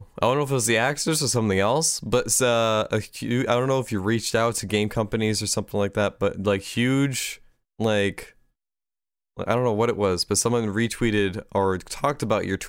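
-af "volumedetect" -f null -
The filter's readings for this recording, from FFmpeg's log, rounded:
mean_volume: -23.8 dB
max_volume: -5.5 dB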